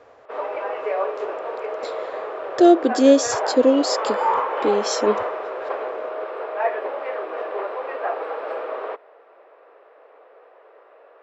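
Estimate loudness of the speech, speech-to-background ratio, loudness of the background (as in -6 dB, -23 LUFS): -19.0 LUFS, 8.0 dB, -27.0 LUFS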